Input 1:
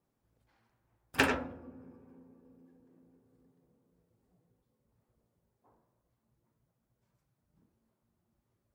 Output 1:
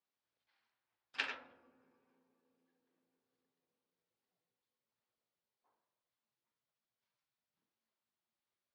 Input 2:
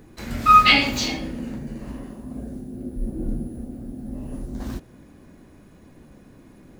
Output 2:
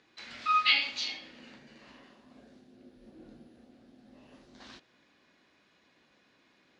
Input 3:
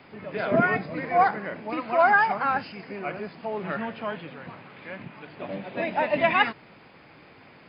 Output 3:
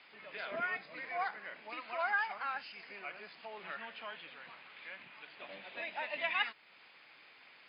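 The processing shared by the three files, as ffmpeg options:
-filter_complex "[0:a]lowpass=f=4200:w=0.5412,lowpass=f=4200:w=1.3066,aderivative,asplit=2[s0][s1];[s1]acompressor=threshold=0.00282:ratio=6,volume=1.06[s2];[s0][s2]amix=inputs=2:normalize=0"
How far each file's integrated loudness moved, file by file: -10.0 LU, -8.0 LU, -14.0 LU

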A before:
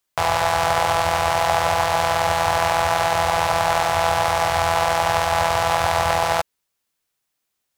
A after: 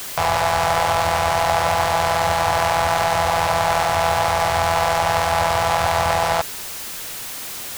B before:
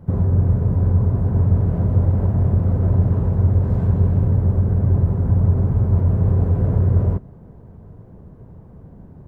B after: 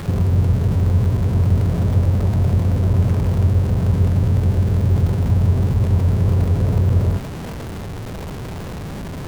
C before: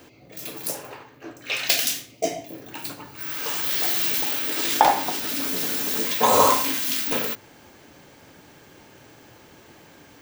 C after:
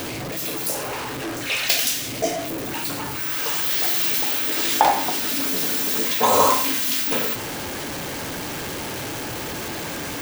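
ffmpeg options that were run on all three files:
-af "aeval=exprs='val(0)+0.5*0.0668*sgn(val(0))':c=same,volume=0.891"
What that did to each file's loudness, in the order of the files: +0.5 LU, +0.5 LU, +0.5 LU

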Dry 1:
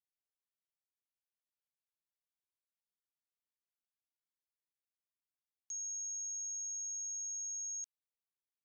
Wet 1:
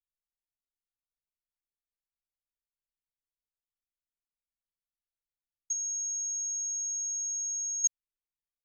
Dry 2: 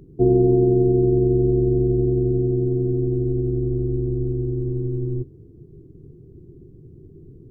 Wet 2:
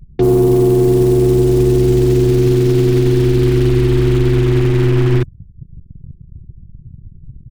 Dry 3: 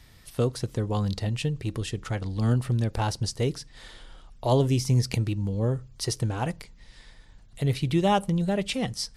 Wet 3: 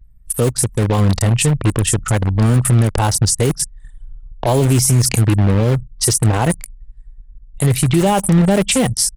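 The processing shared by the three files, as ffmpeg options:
-filter_complex "[0:a]highshelf=f=6100:t=q:w=1.5:g=11.5,acrossover=split=220|650|2700[s0][s1][s2][s3];[s1]acrusher=bits=5:mix=0:aa=0.000001[s4];[s0][s4][s2][s3]amix=inputs=4:normalize=0,acrossover=split=5800[s5][s6];[s6]adelay=30[s7];[s5][s7]amix=inputs=2:normalize=0,anlmdn=2.51,acontrast=69,alimiter=level_in=4.73:limit=0.891:release=50:level=0:latency=1,volume=0.596"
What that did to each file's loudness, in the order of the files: +8.5 LU, +8.0 LU, +11.5 LU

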